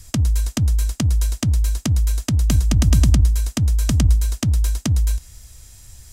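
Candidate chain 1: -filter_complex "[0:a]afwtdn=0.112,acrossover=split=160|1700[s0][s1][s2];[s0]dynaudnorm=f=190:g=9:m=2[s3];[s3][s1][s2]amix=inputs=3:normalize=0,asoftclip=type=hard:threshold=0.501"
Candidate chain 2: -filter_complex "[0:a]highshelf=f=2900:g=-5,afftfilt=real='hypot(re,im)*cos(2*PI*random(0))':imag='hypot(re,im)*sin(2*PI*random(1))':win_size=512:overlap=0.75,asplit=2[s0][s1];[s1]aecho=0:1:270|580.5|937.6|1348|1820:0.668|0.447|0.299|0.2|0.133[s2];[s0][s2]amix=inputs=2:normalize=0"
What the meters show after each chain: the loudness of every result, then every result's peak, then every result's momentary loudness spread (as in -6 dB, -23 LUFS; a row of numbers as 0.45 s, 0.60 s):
-16.0 LUFS, -23.5 LUFS; -6.0 dBFS, -6.5 dBFS; 6 LU, 8 LU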